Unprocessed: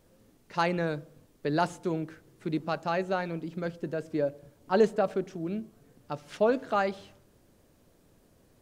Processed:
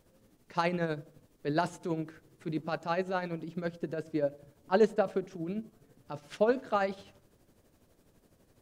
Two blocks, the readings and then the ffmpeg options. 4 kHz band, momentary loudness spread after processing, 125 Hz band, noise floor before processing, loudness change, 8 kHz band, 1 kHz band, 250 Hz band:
-3.0 dB, 15 LU, -2.5 dB, -63 dBFS, -2.0 dB, n/a, -3.0 dB, -2.5 dB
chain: -af "tremolo=f=12:d=0.55"

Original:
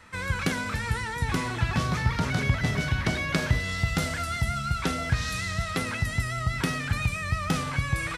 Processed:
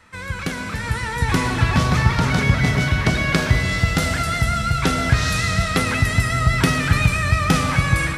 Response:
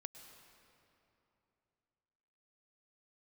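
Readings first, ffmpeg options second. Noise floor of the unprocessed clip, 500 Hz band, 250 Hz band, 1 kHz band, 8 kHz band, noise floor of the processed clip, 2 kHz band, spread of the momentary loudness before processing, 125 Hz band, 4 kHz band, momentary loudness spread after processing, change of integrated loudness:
-33 dBFS, +8.5 dB, +8.5 dB, +8.5 dB, +8.5 dB, -30 dBFS, +8.0 dB, 3 LU, +9.0 dB, +8.5 dB, 7 LU, +8.5 dB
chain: -filter_complex "[0:a]dynaudnorm=f=670:g=3:m=10.5dB[a];[1:a]atrim=start_sample=2205[b];[a][b]afir=irnorm=-1:irlink=0,volume=5.5dB"

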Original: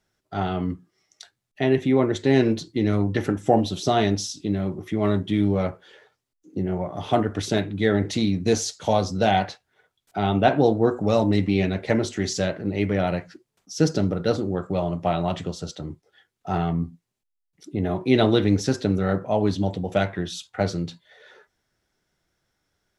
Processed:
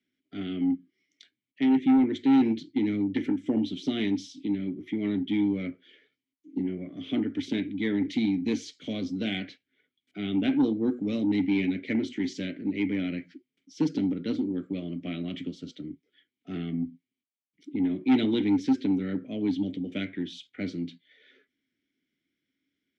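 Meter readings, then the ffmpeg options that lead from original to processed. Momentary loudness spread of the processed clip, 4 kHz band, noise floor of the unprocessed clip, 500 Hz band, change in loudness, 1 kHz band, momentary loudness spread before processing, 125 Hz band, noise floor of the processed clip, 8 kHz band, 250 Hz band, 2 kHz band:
13 LU, -7.0 dB, -79 dBFS, -13.5 dB, -5.0 dB, -15.5 dB, 11 LU, -13.0 dB, under -85 dBFS, under -15 dB, -1.5 dB, -7.5 dB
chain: -filter_complex "[0:a]asplit=3[a][b][c];[a]bandpass=f=270:t=q:w=8,volume=0dB[d];[b]bandpass=f=2.29k:t=q:w=8,volume=-6dB[e];[c]bandpass=f=3.01k:t=q:w=8,volume=-9dB[f];[d][e][f]amix=inputs=3:normalize=0,acrossover=split=140|3500[g][h][i];[h]asoftclip=type=tanh:threshold=-25dB[j];[g][j][i]amix=inputs=3:normalize=0,volume=7.5dB"

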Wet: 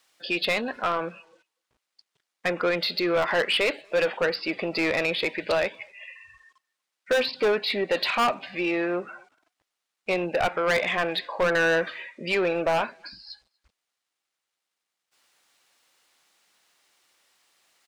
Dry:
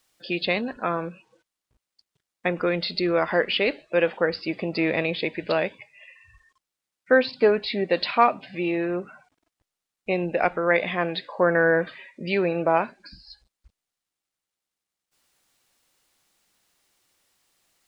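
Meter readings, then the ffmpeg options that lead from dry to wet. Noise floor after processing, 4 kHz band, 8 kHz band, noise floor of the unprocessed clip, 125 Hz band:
-84 dBFS, +2.5 dB, n/a, under -85 dBFS, -6.0 dB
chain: -filter_complex "[0:a]asplit=2[a][b];[b]highpass=f=720:p=1,volume=20dB,asoftclip=type=tanh:threshold=-4.5dB[c];[a][c]amix=inputs=2:normalize=0,lowpass=f=4.7k:p=1,volume=-6dB,aeval=exprs='0.355*(abs(mod(val(0)/0.355+3,4)-2)-1)':c=same,asplit=2[d][e];[e]adelay=240,highpass=300,lowpass=3.4k,asoftclip=type=hard:threshold=-18dB,volume=-28dB[f];[d][f]amix=inputs=2:normalize=0,volume=-8dB"

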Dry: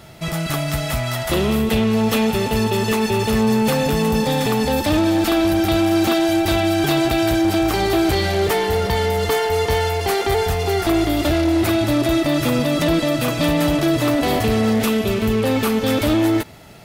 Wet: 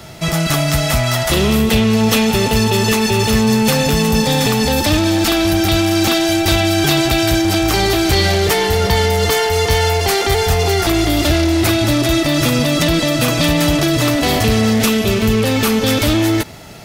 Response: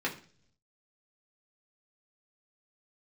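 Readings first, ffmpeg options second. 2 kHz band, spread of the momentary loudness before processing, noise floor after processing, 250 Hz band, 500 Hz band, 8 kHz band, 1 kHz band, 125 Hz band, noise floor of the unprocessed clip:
+6.0 dB, 3 LU, -19 dBFS, +2.5 dB, +2.0 dB, +9.5 dB, +3.0 dB, +6.0 dB, -25 dBFS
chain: -filter_complex "[0:a]acrossover=split=180|1600|6900[a][b][c][d];[b]alimiter=limit=-18dB:level=0:latency=1[e];[a][e][c][d]amix=inputs=4:normalize=0,equalizer=f=5.9k:t=o:w=0.85:g=4.5,volume=6.5dB"

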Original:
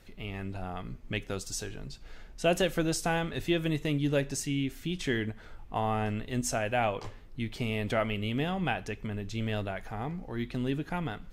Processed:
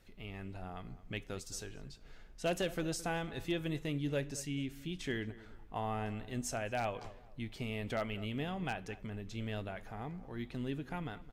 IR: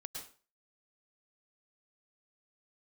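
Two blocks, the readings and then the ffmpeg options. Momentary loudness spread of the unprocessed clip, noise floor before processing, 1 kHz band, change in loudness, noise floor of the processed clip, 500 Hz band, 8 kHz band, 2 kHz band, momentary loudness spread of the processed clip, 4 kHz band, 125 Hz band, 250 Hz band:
10 LU, -50 dBFS, -7.5 dB, -7.5 dB, -55 dBFS, -7.5 dB, -7.5 dB, -7.5 dB, 10 LU, -7.5 dB, -7.5 dB, -7.5 dB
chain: -filter_complex "[0:a]aeval=exprs='0.119*(abs(mod(val(0)/0.119+3,4)-2)-1)':c=same,asplit=2[a][b];[b]adelay=218,lowpass=f=2k:p=1,volume=-17dB,asplit=2[c][d];[d]adelay=218,lowpass=f=2k:p=1,volume=0.31,asplit=2[e][f];[f]adelay=218,lowpass=f=2k:p=1,volume=0.31[g];[c][e][g]amix=inputs=3:normalize=0[h];[a][h]amix=inputs=2:normalize=0,volume=-7.5dB"

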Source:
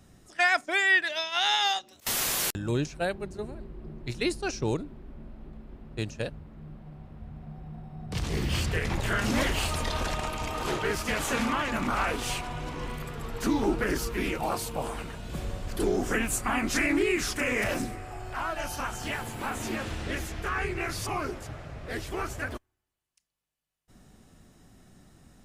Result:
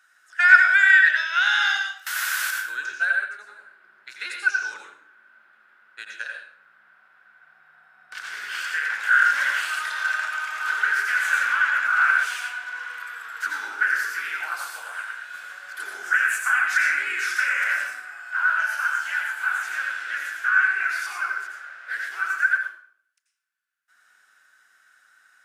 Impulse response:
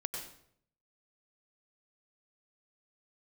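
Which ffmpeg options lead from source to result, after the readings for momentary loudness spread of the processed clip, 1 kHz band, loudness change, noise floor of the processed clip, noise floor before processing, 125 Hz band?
17 LU, +5.0 dB, +8.0 dB, -61 dBFS, -69 dBFS, under -40 dB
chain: -filter_complex "[0:a]highpass=f=1.5k:t=q:w=15[a];[1:a]atrim=start_sample=2205,asetrate=48510,aresample=44100[b];[a][b]afir=irnorm=-1:irlink=0,volume=-2dB"

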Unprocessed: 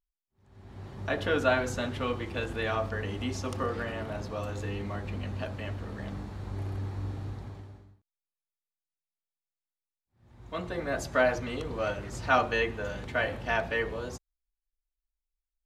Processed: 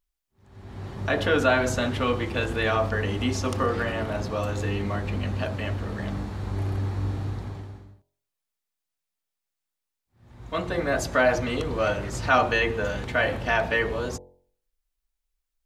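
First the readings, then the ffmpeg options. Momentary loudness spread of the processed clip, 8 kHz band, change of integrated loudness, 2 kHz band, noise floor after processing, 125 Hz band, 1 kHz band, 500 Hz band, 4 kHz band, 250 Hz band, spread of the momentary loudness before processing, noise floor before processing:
11 LU, +7.5 dB, +6.0 dB, +6.0 dB, -85 dBFS, +7.0 dB, +5.5 dB, +5.5 dB, +6.5 dB, +6.5 dB, 14 LU, under -85 dBFS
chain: -filter_complex "[0:a]bandreject=f=45.45:t=h:w=4,bandreject=f=90.9:t=h:w=4,bandreject=f=136.35:t=h:w=4,bandreject=f=181.8:t=h:w=4,bandreject=f=227.25:t=h:w=4,bandreject=f=272.7:t=h:w=4,bandreject=f=318.15:t=h:w=4,bandreject=f=363.6:t=h:w=4,bandreject=f=409.05:t=h:w=4,bandreject=f=454.5:t=h:w=4,bandreject=f=499.95:t=h:w=4,bandreject=f=545.4:t=h:w=4,bandreject=f=590.85:t=h:w=4,bandreject=f=636.3:t=h:w=4,bandreject=f=681.75:t=h:w=4,bandreject=f=727.2:t=h:w=4,bandreject=f=772.65:t=h:w=4,bandreject=f=818.1:t=h:w=4,bandreject=f=863.55:t=h:w=4,bandreject=f=909:t=h:w=4,bandreject=f=954.45:t=h:w=4,bandreject=f=999.9:t=h:w=4,asplit=2[a][b];[b]alimiter=limit=-22.5dB:level=0:latency=1:release=21,volume=0dB[c];[a][c]amix=inputs=2:normalize=0,volume=1.5dB"

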